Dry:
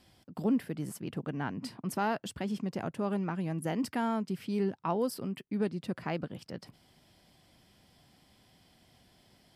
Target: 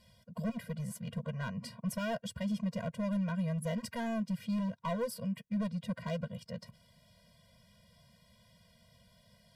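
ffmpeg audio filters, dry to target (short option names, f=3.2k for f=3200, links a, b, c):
-af "volume=29dB,asoftclip=hard,volume=-29dB,afftfilt=real='re*eq(mod(floor(b*sr/1024/230),2),0)':imag='im*eq(mod(floor(b*sr/1024/230),2),0)':win_size=1024:overlap=0.75,volume=1.5dB"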